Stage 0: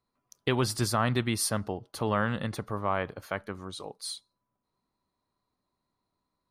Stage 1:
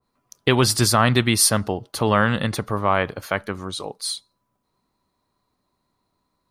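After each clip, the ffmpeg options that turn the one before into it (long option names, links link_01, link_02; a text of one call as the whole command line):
ffmpeg -i in.wav -af "adynamicequalizer=threshold=0.0112:dfrequency=1800:dqfactor=0.7:tfrequency=1800:tqfactor=0.7:attack=5:release=100:ratio=0.375:range=2:mode=boostabove:tftype=highshelf,volume=9dB" out.wav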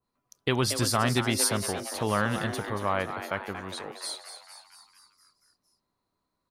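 ffmpeg -i in.wav -filter_complex "[0:a]asplit=8[link_01][link_02][link_03][link_04][link_05][link_06][link_07][link_08];[link_02]adelay=231,afreqshift=140,volume=-9.5dB[link_09];[link_03]adelay=462,afreqshift=280,volume=-13.9dB[link_10];[link_04]adelay=693,afreqshift=420,volume=-18.4dB[link_11];[link_05]adelay=924,afreqshift=560,volume=-22.8dB[link_12];[link_06]adelay=1155,afreqshift=700,volume=-27.2dB[link_13];[link_07]adelay=1386,afreqshift=840,volume=-31.7dB[link_14];[link_08]adelay=1617,afreqshift=980,volume=-36.1dB[link_15];[link_01][link_09][link_10][link_11][link_12][link_13][link_14][link_15]amix=inputs=8:normalize=0,volume=-8.5dB" out.wav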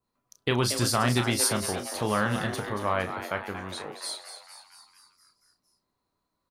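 ffmpeg -i in.wav -filter_complex "[0:a]asplit=2[link_01][link_02];[link_02]adelay=33,volume=-8.5dB[link_03];[link_01][link_03]amix=inputs=2:normalize=0" out.wav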